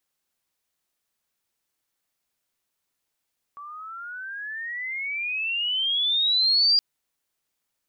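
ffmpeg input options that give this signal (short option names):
-f lavfi -i "aevalsrc='pow(10,(-15.5+21.5*(t/3.22-1))/20)*sin(2*PI*1140*3.22/(25*log(2)/12)*(exp(25*log(2)/12*t/3.22)-1))':d=3.22:s=44100"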